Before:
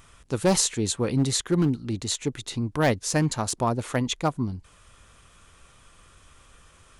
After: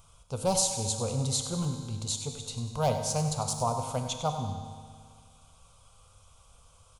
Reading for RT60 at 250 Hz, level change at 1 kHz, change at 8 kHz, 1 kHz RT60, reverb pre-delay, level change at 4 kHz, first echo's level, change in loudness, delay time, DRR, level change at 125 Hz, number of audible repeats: 2.0 s, -1.5 dB, -2.5 dB, 2.0 s, 4 ms, -4.0 dB, -11.5 dB, -5.0 dB, 97 ms, 4.5 dB, -4.0 dB, 2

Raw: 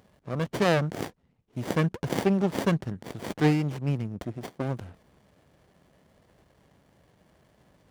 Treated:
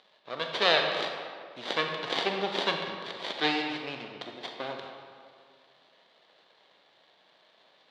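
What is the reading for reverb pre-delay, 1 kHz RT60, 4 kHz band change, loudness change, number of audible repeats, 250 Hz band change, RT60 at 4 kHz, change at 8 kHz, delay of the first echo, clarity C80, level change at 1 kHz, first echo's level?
27 ms, 2.1 s, +11.0 dB, -2.0 dB, no echo, -11.0 dB, 1.3 s, -6.5 dB, no echo, 5.0 dB, +2.0 dB, no echo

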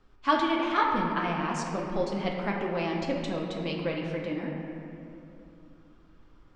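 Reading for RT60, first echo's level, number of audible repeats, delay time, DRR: 2.9 s, no echo, no echo, no echo, -2.0 dB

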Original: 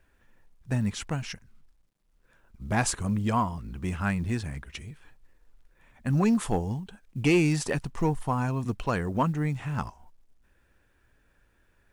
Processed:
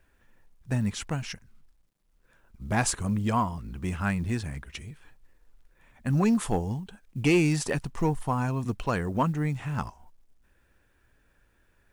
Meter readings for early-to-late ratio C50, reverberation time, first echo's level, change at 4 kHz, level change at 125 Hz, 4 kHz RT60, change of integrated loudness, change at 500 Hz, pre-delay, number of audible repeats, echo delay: no reverb, no reverb, no echo, +0.5 dB, 0.0 dB, no reverb, 0.0 dB, 0.0 dB, no reverb, no echo, no echo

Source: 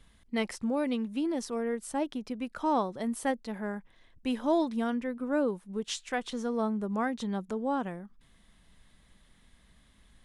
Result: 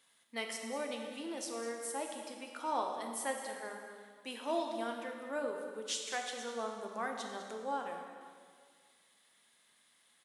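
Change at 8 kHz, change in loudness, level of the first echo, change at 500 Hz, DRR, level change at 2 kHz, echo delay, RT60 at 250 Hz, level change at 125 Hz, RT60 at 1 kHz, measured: +2.0 dB, -7.5 dB, -13.0 dB, -6.5 dB, 2.0 dB, -3.0 dB, 202 ms, 1.9 s, under -15 dB, 1.9 s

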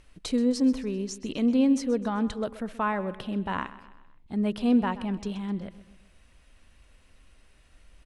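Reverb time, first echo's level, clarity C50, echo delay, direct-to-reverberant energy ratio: no reverb, -16.0 dB, no reverb, 129 ms, no reverb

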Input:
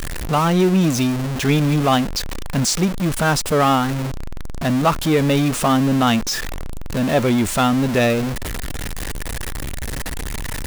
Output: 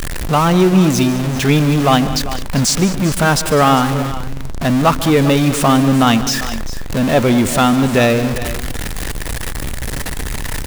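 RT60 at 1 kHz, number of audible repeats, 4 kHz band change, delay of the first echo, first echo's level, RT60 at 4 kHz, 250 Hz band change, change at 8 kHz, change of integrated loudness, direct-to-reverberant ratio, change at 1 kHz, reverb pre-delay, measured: no reverb, 3, +4.5 dB, 146 ms, -17.0 dB, no reverb, +4.5 dB, +4.5 dB, +4.5 dB, no reverb, +4.5 dB, no reverb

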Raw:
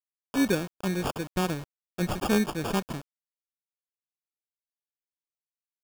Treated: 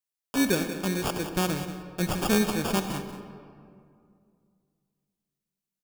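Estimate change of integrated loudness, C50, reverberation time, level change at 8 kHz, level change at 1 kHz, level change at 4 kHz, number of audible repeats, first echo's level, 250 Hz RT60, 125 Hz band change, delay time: +1.0 dB, 7.0 dB, 2.3 s, +5.5 dB, +1.0 dB, +4.0 dB, 1, -12.0 dB, 2.7 s, +1.0 dB, 187 ms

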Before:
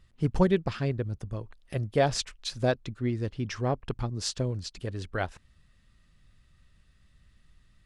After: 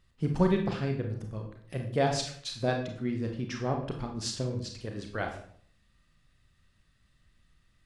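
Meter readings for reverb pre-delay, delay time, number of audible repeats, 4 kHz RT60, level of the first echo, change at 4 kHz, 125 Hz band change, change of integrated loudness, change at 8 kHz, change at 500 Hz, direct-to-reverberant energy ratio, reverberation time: 28 ms, no echo, no echo, 0.45 s, no echo, -2.0 dB, -2.5 dB, -1.5 dB, -2.0 dB, -2.0 dB, 2.5 dB, 0.60 s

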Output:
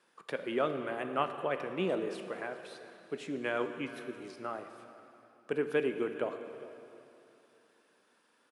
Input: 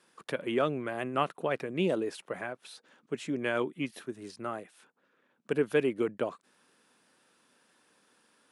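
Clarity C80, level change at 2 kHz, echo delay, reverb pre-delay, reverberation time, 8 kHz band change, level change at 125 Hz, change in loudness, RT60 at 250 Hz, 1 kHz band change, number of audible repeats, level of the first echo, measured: 9.0 dB, -2.5 dB, 408 ms, 6 ms, 2.8 s, -7.0 dB, -6.5 dB, -3.0 dB, 3.0 s, -1.5 dB, 1, -19.5 dB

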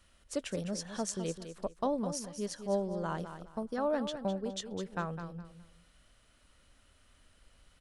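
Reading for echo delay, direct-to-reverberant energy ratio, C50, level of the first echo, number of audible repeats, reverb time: 207 ms, no reverb, no reverb, -10.0 dB, 3, no reverb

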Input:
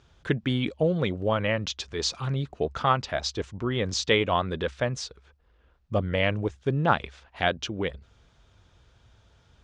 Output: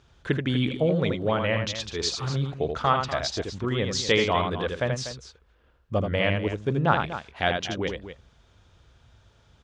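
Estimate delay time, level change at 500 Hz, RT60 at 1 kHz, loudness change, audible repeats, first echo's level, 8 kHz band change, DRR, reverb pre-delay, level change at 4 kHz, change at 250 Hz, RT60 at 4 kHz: 80 ms, +1.0 dB, no reverb, +1.0 dB, 2, -5.5 dB, +1.5 dB, no reverb, no reverb, +1.5 dB, +1.5 dB, no reverb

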